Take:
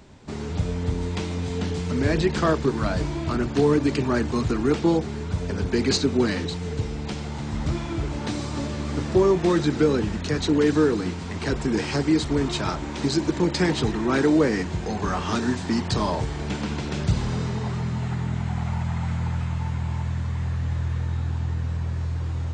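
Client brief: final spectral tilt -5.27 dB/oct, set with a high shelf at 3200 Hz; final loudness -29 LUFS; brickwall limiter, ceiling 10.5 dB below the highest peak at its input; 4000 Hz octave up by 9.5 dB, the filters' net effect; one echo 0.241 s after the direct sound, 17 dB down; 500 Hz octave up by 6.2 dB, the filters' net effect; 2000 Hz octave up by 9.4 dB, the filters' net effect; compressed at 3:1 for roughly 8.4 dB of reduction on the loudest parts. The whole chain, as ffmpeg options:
-af "equalizer=f=500:t=o:g=7.5,equalizer=f=2k:t=o:g=8.5,highshelf=f=3.2k:g=5.5,equalizer=f=4k:t=o:g=5,acompressor=threshold=-21dB:ratio=3,alimiter=limit=-19.5dB:level=0:latency=1,aecho=1:1:241:0.141,volume=-1dB"

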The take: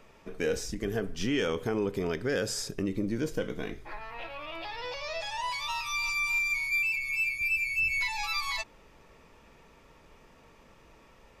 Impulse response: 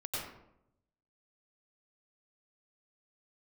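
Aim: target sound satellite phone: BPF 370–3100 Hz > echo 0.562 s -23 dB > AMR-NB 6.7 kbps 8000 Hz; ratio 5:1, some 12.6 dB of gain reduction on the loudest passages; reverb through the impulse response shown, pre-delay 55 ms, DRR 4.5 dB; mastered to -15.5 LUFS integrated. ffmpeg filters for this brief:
-filter_complex "[0:a]acompressor=threshold=-40dB:ratio=5,asplit=2[a][b];[1:a]atrim=start_sample=2205,adelay=55[c];[b][c]afir=irnorm=-1:irlink=0,volume=-7.5dB[d];[a][d]amix=inputs=2:normalize=0,highpass=370,lowpass=3.1k,aecho=1:1:562:0.0708,volume=28.5dB" -ar 8000 -c:a libopencore_amrnb -b:a 6700

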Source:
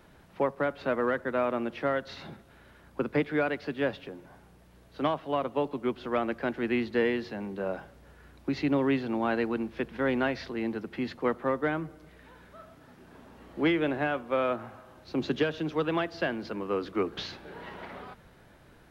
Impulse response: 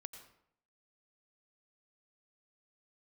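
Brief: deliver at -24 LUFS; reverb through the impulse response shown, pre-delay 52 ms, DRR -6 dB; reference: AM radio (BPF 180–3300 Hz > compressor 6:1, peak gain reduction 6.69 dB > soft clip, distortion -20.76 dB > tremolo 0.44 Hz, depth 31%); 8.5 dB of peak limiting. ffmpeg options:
-filter_complex "[0:a]alimiter=limit=-23dB:level=0:latency=1,asplit=2[a][b];[1:a]atrim=start_sample=2205,adelay=52[c];[b][c]afir=irnorm=-1:irlink=0,volume=10.5dB[d];[a][d]amix=inputs=2:normalize=0,highpass=180,lowpass=3.3k,acompressor=threshold=-26dB:ratio=6,asoftclip=threshold=-22dB,tremolo=f=0.44:d=0.31,volume=10dB"

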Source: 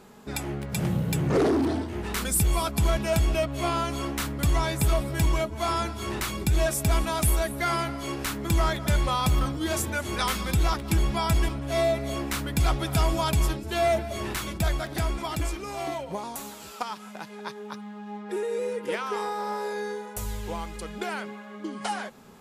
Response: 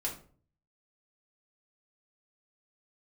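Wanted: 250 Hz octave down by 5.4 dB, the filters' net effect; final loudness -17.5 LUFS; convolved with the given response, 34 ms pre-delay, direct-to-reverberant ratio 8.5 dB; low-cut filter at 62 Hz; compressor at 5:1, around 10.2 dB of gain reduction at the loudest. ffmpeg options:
-filter_complex "[0:a]highpass=62,equalizer=f=250:t=o:g=-8,acompressor=threshold=-33dB:ratio=5,asplit=2[a][b];[1:a]atrim=start_sample=2205,adelay=34[c];[b][c]afir=irnorm=-1:irlink=0,volume=-11dB[d];[a][d]amix=inputs=2:normalize=0,volume=18.5dB"

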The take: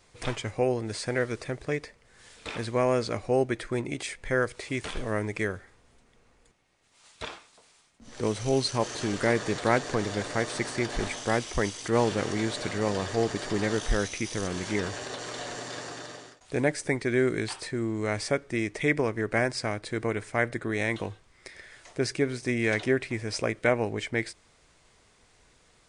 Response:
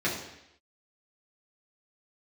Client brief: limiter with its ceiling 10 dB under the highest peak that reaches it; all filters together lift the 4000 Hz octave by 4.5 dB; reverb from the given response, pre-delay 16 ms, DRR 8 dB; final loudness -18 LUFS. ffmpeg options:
-filter_complex "[0:a]equalizer=f=4k:t=o:g=5.5,alimiter=limit=-18dB:level=0:latency=1,asplit=2[a][b];[1:a]atrim=start_sample=2205,adelay=16[c];[b][c]afir=irnorm=-1:irlink=0,volume=-18.5dB[d];[a][d]amix=inputs=2:normalize=0,volume=12dB"

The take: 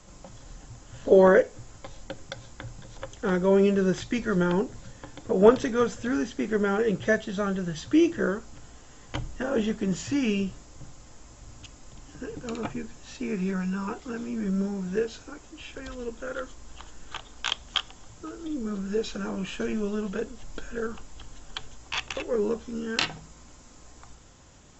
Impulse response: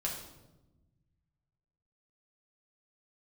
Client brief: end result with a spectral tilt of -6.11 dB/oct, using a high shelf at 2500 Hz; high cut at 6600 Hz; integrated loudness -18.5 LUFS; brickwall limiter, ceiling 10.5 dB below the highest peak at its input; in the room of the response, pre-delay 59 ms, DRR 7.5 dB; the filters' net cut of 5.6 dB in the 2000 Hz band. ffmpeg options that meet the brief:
-filter_complex "[0:a]lowpass=6.6k,equalizer=f=2k:t=o:g=-6,highshelf=f=2.5k:g=-4,alimiter=limit=-16dB:level=0:latency=1,asplit=2[a][b];[1:a]atrim=start_sample=2205,adelay=59[c];[b][c]afir=irnorm=-1:irlink=0,volume=-10.5dB[d];[a][d]amix=inputs=2:normalize=0,volume=10.5dB"

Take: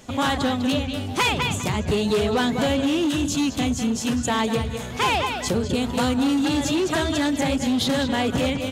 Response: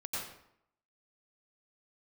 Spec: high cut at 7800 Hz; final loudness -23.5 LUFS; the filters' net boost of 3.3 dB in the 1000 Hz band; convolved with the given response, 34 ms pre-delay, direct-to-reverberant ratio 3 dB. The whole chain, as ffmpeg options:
-filter_complex "[0:a]lowpass=7.8k,equalizer=f=1k:t=o:g=4,asplit=2[a][b];[1:a]atrim=start_sample=2205,adelay=34[c];[b][c]afir=irnorm=-1:irlink=0,volume=-5.5dB[d];[a][d]amix=inputs=2:normalize=0,volume=-3dB"

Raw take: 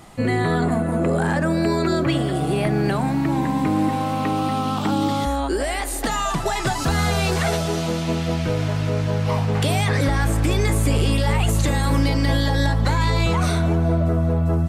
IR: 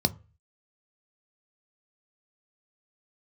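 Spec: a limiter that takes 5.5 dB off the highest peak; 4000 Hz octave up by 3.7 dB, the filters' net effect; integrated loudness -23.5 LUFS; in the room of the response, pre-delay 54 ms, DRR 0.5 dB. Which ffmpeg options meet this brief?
-filter_complex "[0:a]equalizer=f=4k:t=o:g=4.5,alimiter=limit=-14.5dB:level=0:latency=1,asplit=2[a][b];[1:a]atrim=start_sample=2205,adelay=54[c];[b][c]afir=irnorm=-1:irlink=0,volume=-9.5dB[d];[a][d]amix=inputs=2:normalize=0,volume=-9dB"

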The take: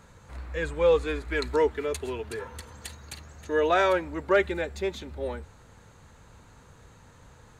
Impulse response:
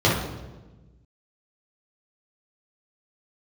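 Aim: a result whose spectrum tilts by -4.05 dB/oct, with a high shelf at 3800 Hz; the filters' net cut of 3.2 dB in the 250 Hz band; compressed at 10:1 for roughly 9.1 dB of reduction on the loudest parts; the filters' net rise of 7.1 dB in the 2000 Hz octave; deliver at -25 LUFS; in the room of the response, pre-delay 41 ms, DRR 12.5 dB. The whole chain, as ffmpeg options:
-filter_complex "[0:a]equalizer=f=250:t=o:g=-5.5,equalizer=f=2k:t=o:g=8.5,highshelf=f=3.8k:g=3,acompressor=threshold=-25dB:ratio=10,asplit=2[a][b];[1:a]atrim=start_sample=2205,adelay=41[c];[b][c]afir=irnorm=-1:irlink=0,volume=-32dB[d];[a][d]amix=inputs=2:normalize=0,volume=6.5dB"

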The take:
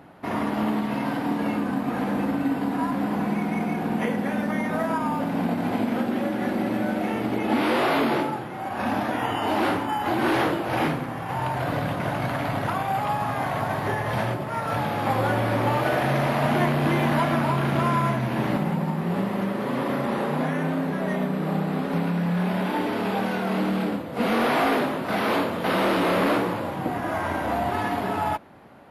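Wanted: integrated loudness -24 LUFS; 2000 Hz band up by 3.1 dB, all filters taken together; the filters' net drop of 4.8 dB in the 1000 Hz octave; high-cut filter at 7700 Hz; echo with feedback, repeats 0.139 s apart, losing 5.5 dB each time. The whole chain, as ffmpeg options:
-af "lowpass=7.7k,equalizer=f=1k:t=o:g=-8,equalizer=f=2k:t=o:g=6.5,aecho=1:1:139|278|417|556|695|834|973:0.531|0.281|0.149|0.079|0.0419|0.0222|0.0118,volume=0.5dB"

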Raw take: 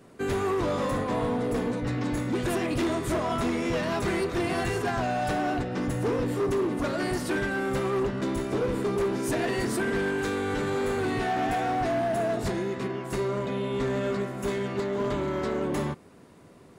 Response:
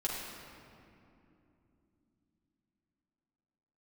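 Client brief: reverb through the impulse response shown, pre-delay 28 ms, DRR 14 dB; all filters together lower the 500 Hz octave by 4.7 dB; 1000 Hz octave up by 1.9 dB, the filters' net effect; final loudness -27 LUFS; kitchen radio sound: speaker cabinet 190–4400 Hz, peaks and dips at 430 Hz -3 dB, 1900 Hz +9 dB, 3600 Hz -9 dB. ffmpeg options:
-filter_complex "[0:a]equalizer=f=500:t=o:g=-6,equalizer=f=1k:t=o:g=5,asplit=2[a][b];[1:a]atrim=start_sample=2205,adelay=28[c];[b][c]afir=irnorm=-1:irlink=0,volume=-18.5dB[d];[a][d]amix=inputs=2:normalize=0,highpass=190,equalizer=f=430:t=q:w=4:g=-3,equalizer=f=1.9k:t=q:w=4:g=9,equalizer=f=3.6k:t=q:w=4:g=-9,lowpass=f=4.4k:w=0.5412,lowpass=f=4.4k:w=1.3066,volume=2dB"

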